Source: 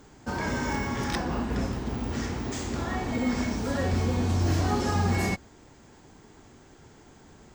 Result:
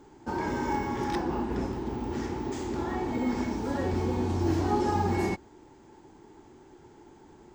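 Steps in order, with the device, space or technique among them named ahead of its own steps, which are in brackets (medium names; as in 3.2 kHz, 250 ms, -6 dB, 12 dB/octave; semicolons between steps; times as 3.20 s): inside a helmet (treble shelf 5.7 kHz -5 dB; small resonant body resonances 350/860 Hz, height 12 dB, ringing for 30 ms); trim -5.5 dB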